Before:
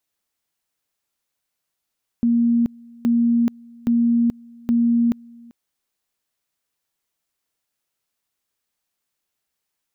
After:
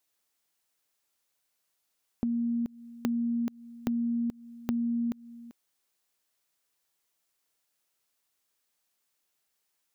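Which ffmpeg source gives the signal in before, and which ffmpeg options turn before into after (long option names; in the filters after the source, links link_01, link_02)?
-f lavfi -i "aevalsrc='pow(10,(-14-26.5*gte(mod(t,0.82),0.43))/20)*sin(2*PI*235*t)':duration=3.28:sample_rate=44100"
-af "bass=frequency=250:gain=-5,treble=frequency=4000:gain=2,acompressor=threshold=-29dB:ratio=5"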